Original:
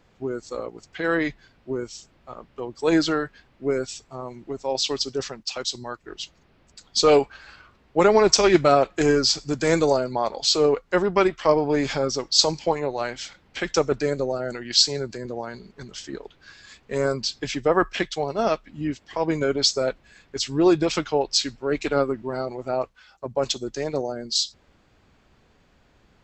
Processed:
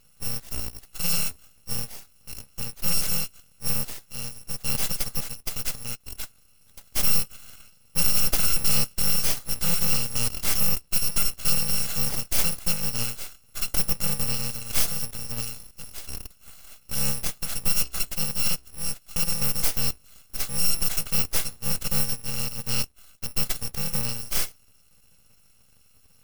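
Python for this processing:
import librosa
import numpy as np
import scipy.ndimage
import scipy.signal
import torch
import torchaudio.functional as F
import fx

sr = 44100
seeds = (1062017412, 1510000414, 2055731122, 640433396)

y = fx.bit_reversed(x, sr, seeds[0], block=128)
y = fx.tube_stage(y, sr, drive_db=16.0, bias=0.3)
y = np.abs(y)
y = y * 10.0 ** (4.0 / 20.0)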